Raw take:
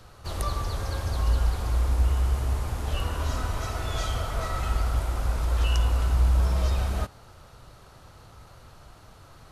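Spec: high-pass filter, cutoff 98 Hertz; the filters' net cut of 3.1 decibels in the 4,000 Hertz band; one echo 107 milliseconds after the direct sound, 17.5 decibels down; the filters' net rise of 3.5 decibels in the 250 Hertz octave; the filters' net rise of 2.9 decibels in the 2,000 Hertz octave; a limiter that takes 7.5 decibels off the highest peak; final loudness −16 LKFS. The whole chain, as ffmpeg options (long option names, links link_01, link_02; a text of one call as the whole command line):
ffmpeg -i in.wav -af "highpass=98,equalizer=frequency=250:width_type=o:gain=5,equalizer=frequency=2000:width_type=o:gain=5.5,equalizer=frequency=4000:width_type=o:gain=-7,alimiter=limit=-24dB:level=0:latency=1,aecho=1:1:107:0.133,volume=18dB" out.wav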